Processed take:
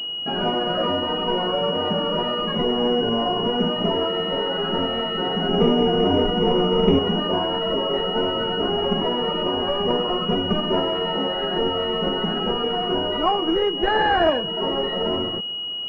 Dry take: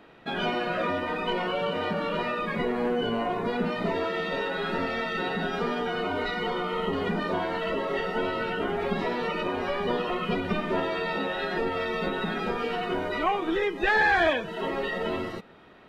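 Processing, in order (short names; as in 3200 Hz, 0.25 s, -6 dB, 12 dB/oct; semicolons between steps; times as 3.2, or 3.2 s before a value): 5.49–6.99 tilt shelf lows +9 dB; pulse-width modulation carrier 2900 Hz; gain +6 dB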